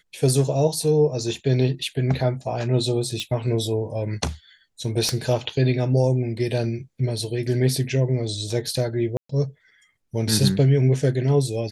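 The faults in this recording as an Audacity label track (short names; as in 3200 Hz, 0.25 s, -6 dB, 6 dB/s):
3.200000	3.200000	pop -14 dBFS
5.090000	5.090000	pop -11 dBFS
9.170000	9.290000	gap 0.124 s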